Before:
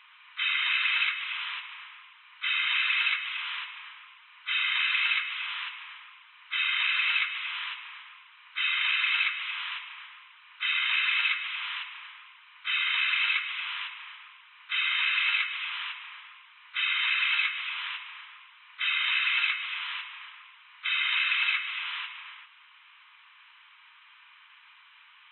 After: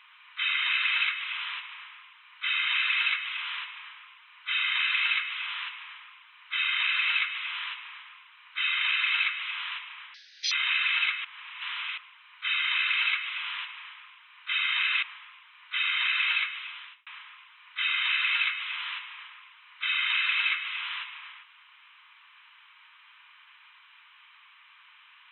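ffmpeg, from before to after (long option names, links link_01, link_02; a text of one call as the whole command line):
ffmpeg -i in.wav -filter_complex "[0:a]asplit=7[link_01][link_02][link_03][link_04][link_05][link_06][link_07];[link_01]atrim=end=10.144[link_08];[link_02]atrim=start=10.14:end=10.74,asetpts=PTS-STARTPTS,asetrate=70560,aresample=44100[link_09];[link_03]atrim=start=10.736:end=11.472[link_10];[link_04]atrim=start=11.468:end=12.202,asetpts=PTS-STARTPTS,areverse[link_11];[link_05]atrim=start=12.198:end=15.252[link_12];[link_06]atrim=start=16.048:end=18.09,asetpts=PTS-STARTPTS,afade=type=out:start_time=1.302:duration=0.74[link_13];[link_07]atrim=start=18.09,asetpts=PTS-STARTPTS,afade=type=in:duration=0.004:curve=hsin[link_14];[link_08][link_09]acrossfade=duration=0.004:curve1=hsin:curve2=hsin[link_15];[link_15][link_10]acrossfade=duration=0.004:curve1=hsin:curve2=hsin[link_16];[link_16][link_11]acrossfade=duration=0.004:curve1=hsin:curve2=hsin[link_17];[link_17][link_12]acrossfade=duration=0.004:curve1=hsin:curve2=hsin[link_18];[link_13][link_14]concat=n=2:v=0:a=1[link_19];[link_18][link_19]acrossfade=duration=0.004:curve1=hsin:curve2=hsin" out.wav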